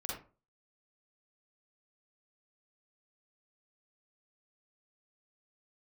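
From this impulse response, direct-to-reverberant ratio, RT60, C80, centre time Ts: −5.0 dB, 0.35 s, 7.0 dB, 49 ms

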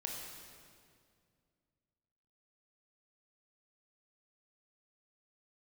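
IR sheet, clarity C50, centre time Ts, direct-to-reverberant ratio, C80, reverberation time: 1.0 dB, 92 ms, −1.0 dB, 2.5 dB, 2.2 s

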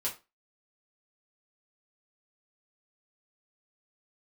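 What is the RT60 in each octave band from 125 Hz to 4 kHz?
0.25, 0.30, 0.30, 0.25, 0.25, 0.25 seconds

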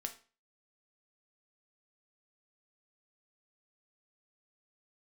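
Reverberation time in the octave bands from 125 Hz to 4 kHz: 0.40, 0.40, 0.35, 0.35, 0.35, 0.35 seconds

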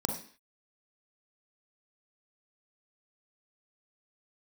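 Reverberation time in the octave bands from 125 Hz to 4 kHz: 0.35 s, 0.45 s, 0.45 s, 0.45 s, 0.55 s, can't be measured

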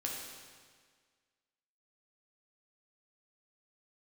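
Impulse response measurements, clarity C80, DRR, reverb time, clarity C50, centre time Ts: 3.0 dB, −2.0 dB, 1.7 s, 1.0 dB, 78 ms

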